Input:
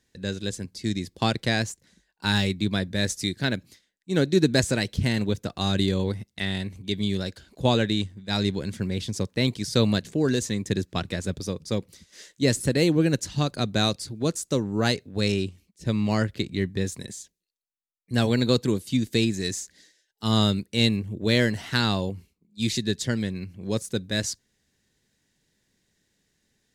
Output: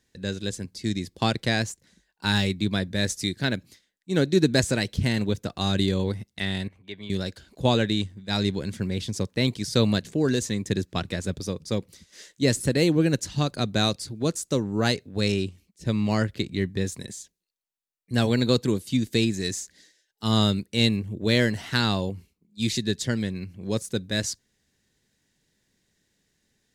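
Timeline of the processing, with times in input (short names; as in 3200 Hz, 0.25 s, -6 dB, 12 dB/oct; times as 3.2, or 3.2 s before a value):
6.68–7.1 three-band isolator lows -15 dB, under 550 Hz, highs -20 dB, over 2600 Hz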